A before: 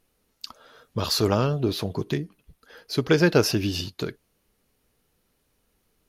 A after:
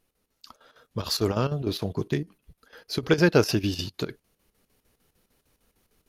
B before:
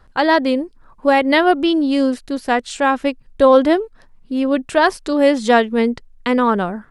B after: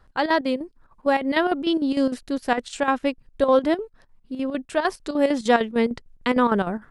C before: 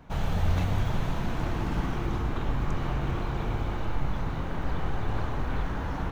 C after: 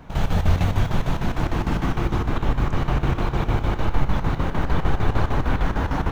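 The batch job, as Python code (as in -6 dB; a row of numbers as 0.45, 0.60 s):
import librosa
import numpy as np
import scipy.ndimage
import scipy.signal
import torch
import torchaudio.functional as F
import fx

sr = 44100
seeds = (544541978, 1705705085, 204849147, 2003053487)

y = fx.rider(x, sr, range_db=10, speed_s=2.0)
y = fx.chopper(y, sr, hz=6.6, depth_pct=65, duty_pct=70)
y = y * 10.0 ** (-6 / 20.0) / np.max(np.abs(y))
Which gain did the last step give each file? -2.5, -5.0, +8.5 dB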